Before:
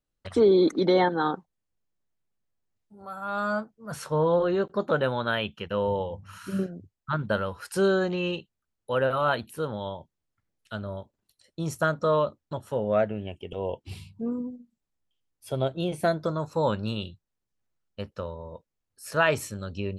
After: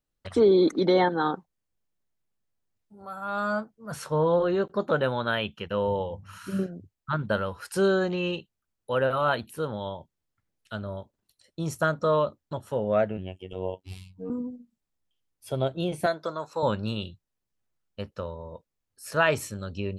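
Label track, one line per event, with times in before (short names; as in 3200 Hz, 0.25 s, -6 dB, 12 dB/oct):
13.170000	14.300000	robotiser 93 Hz
16.060000	16.630000	weighting filter A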